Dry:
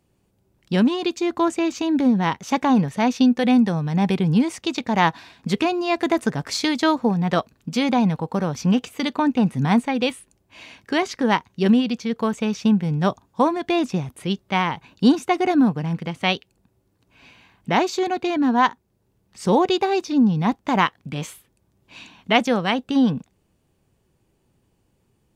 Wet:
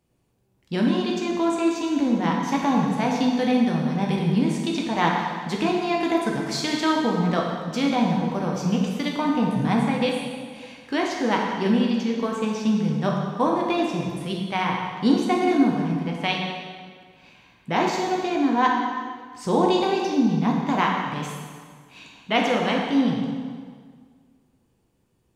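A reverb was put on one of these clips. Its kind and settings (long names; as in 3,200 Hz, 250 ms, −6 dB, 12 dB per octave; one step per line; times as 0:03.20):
dense smooth reverb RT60 1.8 s, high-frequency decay 0.85×, DRR −1.5 dB
level −5.5 dB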